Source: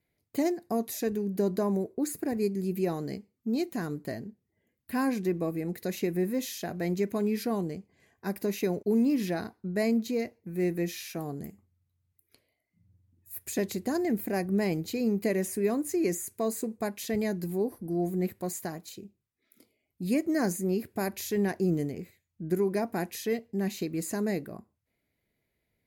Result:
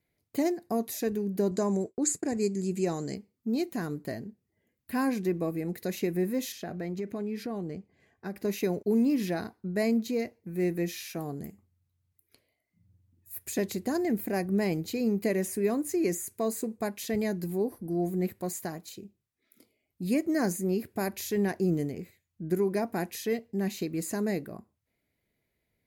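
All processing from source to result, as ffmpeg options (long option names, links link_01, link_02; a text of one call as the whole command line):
ffmpeg -i in.wav -filter_complex "[0:a]asettb=1/sr,asplit=3[link_01][link_02][link_03];[link_01]atrim=end=1.514[link_04];[link_02]atrim=start=1.51:end=3.15,asetpts=PTS-STARTPTS,afade=type=in:duration=0.004:curve=qsin,afade=type=out:start_time=1.636:duration=0.004:curve=qsin,agate=range=-33dB:threshold=-40dB:ratio=3:release=100:detection=peak,lowpass=frequency=7400:width_type=q:width=5.8[link_05];[link_03]atrim=start=3.146[link_06];[link_04][link_05]acrossfade=duration=0.004:curve1=hsin:curve2=qsin[link_07];[link_07][link_06]acrossfade=duration=0.004:curve1=qsin:curve2=hsin,asettb=1/sr,asplit=3[link_08][link_09][link_10];[link_08]atrim=end=6.524[link_11];[link_09]atrim=start=6.52:end=8.45,asetpts=PTS-STARTPTS,afade=type=in:duration=0.004:curve=qsin,afade=type=out:start_time=1.926:duration=0.004:curve=qsin,lowpass=frequency=3200:poles=1,bandreject=frequency=1000:width=12,acompressor=threshold=-31dB:ratio=3:attack=3.2:release=140:knee=1:detection=peak[link_12];[link_10]atrim=start=8.446[link_13];[link_11][link_12]acrossfade=duration=0.004:curve1=hsin:curve2=qsin[link_14];[link_14][link_13]acrossfade=duration=0.004:curve1=qsin:curve2=hsin" out.wav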